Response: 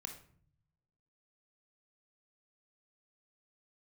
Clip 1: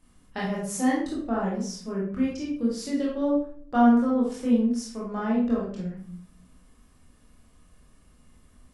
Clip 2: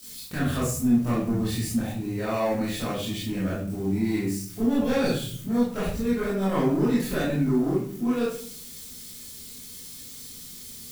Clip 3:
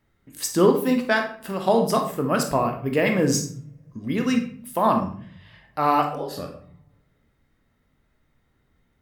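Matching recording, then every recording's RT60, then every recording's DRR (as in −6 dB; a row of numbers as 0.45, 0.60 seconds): 3; 0.55, 0.55, 0.55 seconds; −6.0, −10.0, 3.5 decibels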